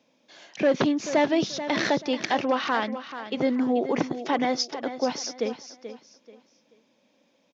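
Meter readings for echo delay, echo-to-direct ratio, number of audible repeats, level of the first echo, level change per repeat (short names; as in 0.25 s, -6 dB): 0.434 s, -11.0 dB, 3, -11.5 dB, -10.5 dB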